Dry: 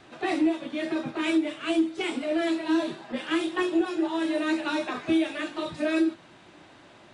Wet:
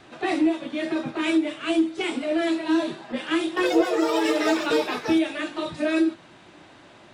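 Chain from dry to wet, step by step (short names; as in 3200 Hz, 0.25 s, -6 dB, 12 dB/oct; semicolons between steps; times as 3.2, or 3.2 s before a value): 3.48–5.77 echoes that change speed 89 ms, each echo +6 st, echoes 2; gain +2.5 dB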